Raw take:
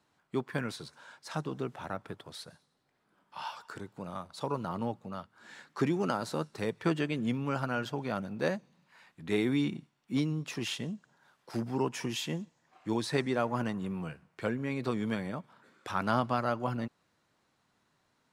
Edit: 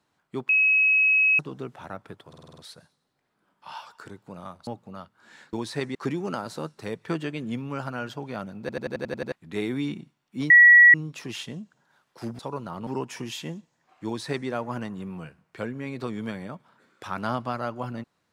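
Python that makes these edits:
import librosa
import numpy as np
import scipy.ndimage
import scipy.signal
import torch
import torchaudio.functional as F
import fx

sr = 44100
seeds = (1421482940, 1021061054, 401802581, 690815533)

y = fx.edit(x, sr, fx.bleep(start_s=0.49, length_s=0.9, hz=2560.0, db=-16.5),
    fx.stutter(start_s=2.28, slice_s=0.05, count=7),
    fx.move(start_s=4.37, length_s=0.48, to_s=11.71),
    fx.stutter_over(start_s=8.36, slice_s=0.09, count=8),
    fx.insert_tone(at_s=10.26, length_s=0.44, hz=1930.0, db=-9.0),
    fx.duplicate(start_s=12.9, length_s=0.42, to_s=5.71), tone=tone)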